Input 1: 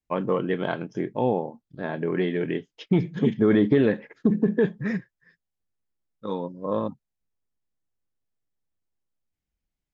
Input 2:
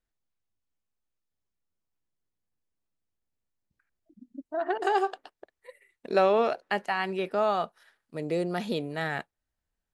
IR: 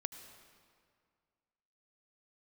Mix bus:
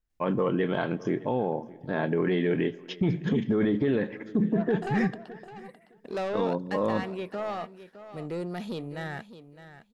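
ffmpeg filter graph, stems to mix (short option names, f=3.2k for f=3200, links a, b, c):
-filter_complex "[0:a]acompressor=threshold=-22dB:ratio=2.5,adelay=100,volume=2dB,asplit=3[a][b][c];[b]volume=-12.5dB[d];[c]volume=-22.5dB[e];[1:a]lowshelf=f=150:g=10.5,asoftclip=type=tanh:threshold=-22.5dB,volume=-4.5dB,asplit=2[f][g];[g]volume=-13.5dB[h];[2:a]atrim=start_sample=2205[i];[d][i]afir=irnorm=-1:irlink=0[j];[e][h]amix=inputs=2:normalize=0,aecho=0:1:611|1222|1833:1|0.16|0.0256[k];[a][f][j][k]amix=inputs=4:normalize=0,alimiter=limit=-17dB:level=0:latency=1:release=12"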